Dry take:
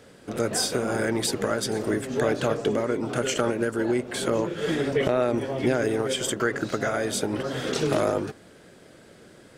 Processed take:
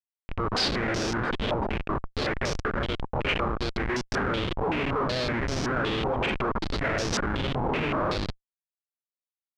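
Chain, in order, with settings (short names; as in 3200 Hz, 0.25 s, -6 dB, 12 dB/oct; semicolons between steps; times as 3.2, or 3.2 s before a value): AGC gain up to 4 dB; 1.65–3.9 HPF 580 Hz 6 dB/oct; Schmitt trigger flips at -22.5 dBFS; stepped low-pass 5.3 Hz 900–5600 Hz; gain -5 dB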